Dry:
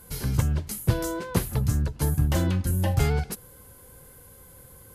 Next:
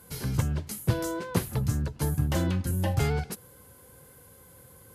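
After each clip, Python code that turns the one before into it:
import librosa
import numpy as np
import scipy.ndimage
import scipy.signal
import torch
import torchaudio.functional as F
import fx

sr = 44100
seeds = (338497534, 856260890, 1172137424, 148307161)

y = scipy.signal.sosfilt(scipy.signal.butter(2, 81.0, 'highpass', fs=sr, output='sos'), x)
y = fx.high_shelf(y, sr, hz=10000.0, db=-4.0)
y = y * librosa.db_to_amplitude(-1.5)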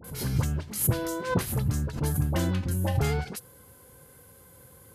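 y = fx.dispersion(x, sr, late='highs', ms=44.0, hz=1200.0)
y = fx.pre_swell(y, sr, db_per_s=110.0)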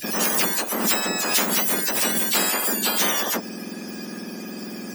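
y = fx.octave_mirror(x, sr, pivot_hz=1600.0)
y = fx.spectral_comp(y, sr, ratio=4.0)
y = y * librosa.db_to_amplitude(4.5)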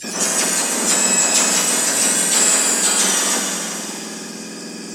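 y = fx.lowpass_res(x, sr, hz=7900.0, q=3.8)
y = fx.rev_plate(y, sr, seeds[0], rt60_s=3.3, hf_ratio=1.0, predelay_ms=0, drr_db=-2.0)
y = y * librosa.db_to_amplitude(-1.0)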